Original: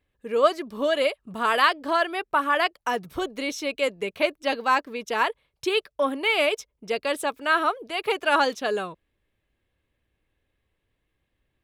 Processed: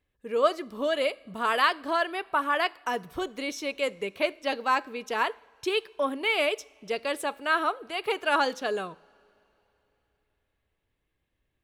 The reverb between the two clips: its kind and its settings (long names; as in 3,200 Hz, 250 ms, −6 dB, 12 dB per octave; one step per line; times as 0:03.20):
coupled-rooms reverb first 0.51 s, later 3.4 s, from −18 dB, DRR 18 dB
level −3.5 dB